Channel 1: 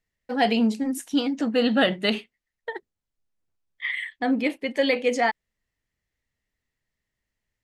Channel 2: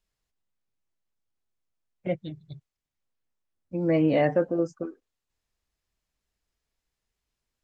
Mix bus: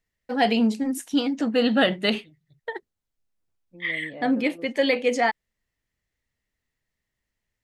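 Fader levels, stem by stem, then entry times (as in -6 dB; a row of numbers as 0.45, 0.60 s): +0.5, -17.5 dB; 0.00, 0.00 s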